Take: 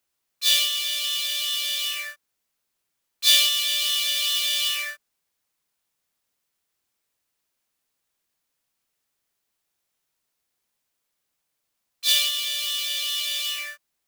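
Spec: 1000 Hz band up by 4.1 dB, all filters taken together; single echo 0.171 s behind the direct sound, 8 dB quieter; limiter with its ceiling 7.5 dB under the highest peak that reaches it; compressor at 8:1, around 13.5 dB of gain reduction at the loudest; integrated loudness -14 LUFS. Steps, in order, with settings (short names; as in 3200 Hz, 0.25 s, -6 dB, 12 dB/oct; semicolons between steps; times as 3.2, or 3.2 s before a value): bell 1000 Hz +5 dB; compressor 8:1, threshold -26 dBFS; limiter -21.5 dBFS; echo 0.171 s -8 dB; gain +15 dB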